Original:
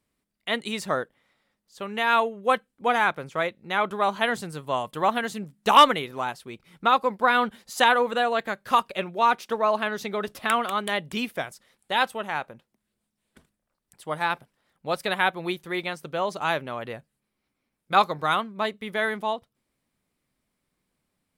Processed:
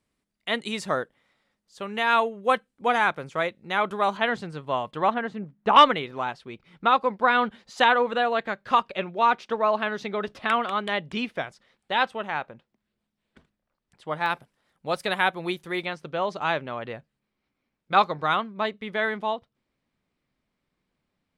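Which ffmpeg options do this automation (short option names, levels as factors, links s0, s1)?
-af "asetnsamples=n=441:p=0,asendcmd='4.17 lowpass f 3900;5.14 lowpass f 1800;5.76 lowpass f 4300;14.26 lowpass f 11000;15.85 lowpass f 4600',lowpass=9400"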